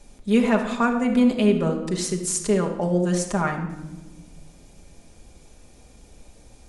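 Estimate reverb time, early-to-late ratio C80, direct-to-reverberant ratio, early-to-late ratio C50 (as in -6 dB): 1.0 s, 10.5 dB, 1.5 dB, 7.5 dB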